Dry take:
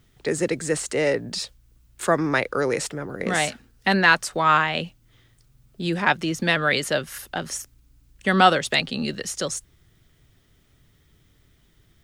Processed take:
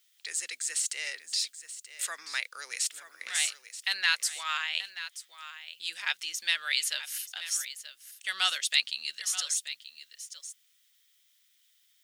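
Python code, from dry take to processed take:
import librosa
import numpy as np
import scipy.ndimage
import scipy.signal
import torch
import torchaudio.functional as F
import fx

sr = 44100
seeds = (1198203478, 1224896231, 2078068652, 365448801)

p1 = scipy.signal.sosfilt(scipy.signal.cheby1(2, 1.0, 2900.0, 'highpass', fs=sr, output='sos'), x)
p2 = fx.high_shelf(p1, sr, hz=4900.0, db=6.5)
p3 = p2 + fx.echo_single(p2, sr, ms=931, db=-13.0, dry=0)
y = p3 * librosa.db_to_amplitude(-3.0)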